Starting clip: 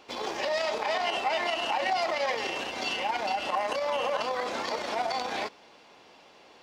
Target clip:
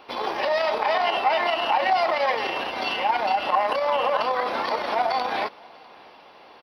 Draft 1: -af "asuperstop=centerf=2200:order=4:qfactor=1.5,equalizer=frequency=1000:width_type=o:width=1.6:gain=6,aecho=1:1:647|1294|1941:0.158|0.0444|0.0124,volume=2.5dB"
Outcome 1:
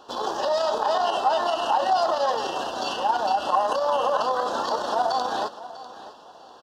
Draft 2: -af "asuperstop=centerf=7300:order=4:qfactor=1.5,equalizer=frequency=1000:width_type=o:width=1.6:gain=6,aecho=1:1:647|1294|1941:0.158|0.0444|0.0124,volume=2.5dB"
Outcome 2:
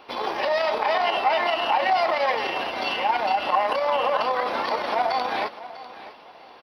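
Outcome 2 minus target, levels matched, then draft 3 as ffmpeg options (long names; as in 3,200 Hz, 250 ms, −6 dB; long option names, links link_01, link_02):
echo-to-direct +11.5 dB
-af "asuperstop=centerf=7300:order=4:qfactor=1.5,equalizer=frequency=1000:width_type=o:width=1.6:gain=6,aecho=1:1:647|1294:0.0422|0.0118,volume=2.5dB"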